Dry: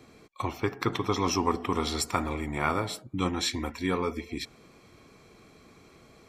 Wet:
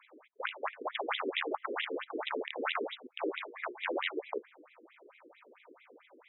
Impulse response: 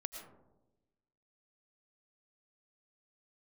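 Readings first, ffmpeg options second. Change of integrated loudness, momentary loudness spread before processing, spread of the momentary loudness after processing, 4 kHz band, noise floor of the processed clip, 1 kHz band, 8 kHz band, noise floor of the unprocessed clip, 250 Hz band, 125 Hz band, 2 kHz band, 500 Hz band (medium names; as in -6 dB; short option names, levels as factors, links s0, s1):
-7.0 dB, 9 LU, 6 LU, -5.5 dB, -64 dBFS, -7.0 dB, under -40 dB, -56 dBFS, -12.5 dB, under -40 dB, -0.5 dB, -5.0 dB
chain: -af "aeval=exprs='val(0)*sin(2*PI*130*n/s)':c=same,aeval=exprs='(mod(16.8*val(0)+1,2)-1)/16.8':c=same,afftfilt=real='re*between(b*sr/1024,350*pow(2800/350,0.5+0.5*sin(2*PI*4.5*pts/sr))/1.41,350*pow(2800/350,0.5+0.5*sin(2*PI*4.5*pts/sr))*1.41)':imag='im*between(b*sr/1024,350*pow(2800/350,0.5+0.5*sin(2*PI*4.5*pts/sr))/1.41,350*pow(2800/350,0.5+0.5*sin(2*PI*4.5*pts/sr))*1.41)':win_size=1024:overlap=0.75,volume=2.24"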